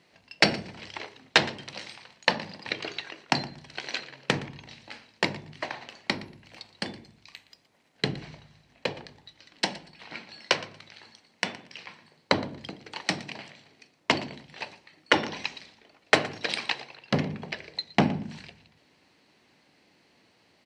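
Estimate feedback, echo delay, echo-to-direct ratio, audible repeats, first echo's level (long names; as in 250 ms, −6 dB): 20%, 117 ms, −19.0 dB, 2, −19.0 dB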